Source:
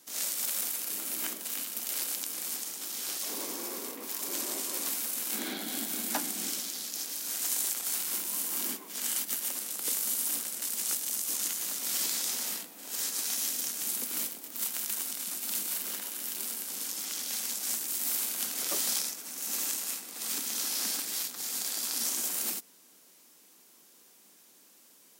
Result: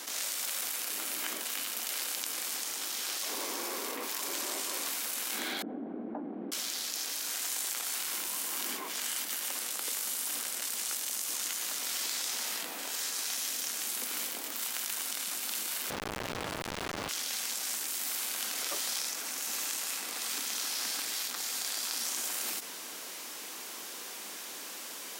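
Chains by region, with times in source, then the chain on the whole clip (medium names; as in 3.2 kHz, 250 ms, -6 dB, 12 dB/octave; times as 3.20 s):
5.62–6.52 s: Butterworth band-pass 250 Hz, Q 0.64 + distance through air 470 m
15.90–17.09 s: peaking EQ 4.1 kHz +4.5 dB 0.45 oct + Schmitt trigger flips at -28.5 dBFS
whole clip: high-pass 820 Hz 6 dB/octave; treble shelf 5.6 kHz -11 dB; level flattener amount 70%; trim +2 dB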